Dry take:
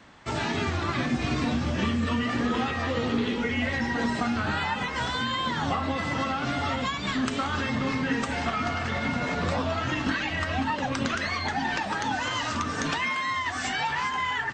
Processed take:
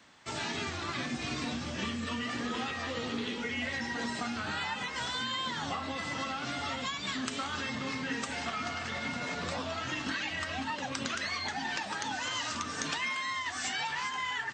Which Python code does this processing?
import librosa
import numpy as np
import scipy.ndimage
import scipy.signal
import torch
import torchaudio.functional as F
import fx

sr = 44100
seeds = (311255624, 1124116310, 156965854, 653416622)

y = fx.highpass(x, sr, hz=120.0, slope=6)
y = fx.high_shelf(y, sr, hz=2800.0, db=10.5)
y = y * librosa.db_to_amplitude(-9.0)